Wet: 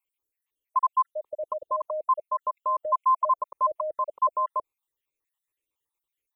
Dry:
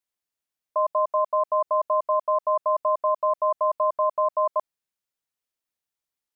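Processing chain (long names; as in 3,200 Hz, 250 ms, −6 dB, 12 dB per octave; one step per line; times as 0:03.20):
time-frequency cells dropped at random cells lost 61%
brickwall limiter −23 dBFS, peak gain reduction 8 dB
phaser with its sweep stopped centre 1,000 Hz, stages 8
level +7.5 dB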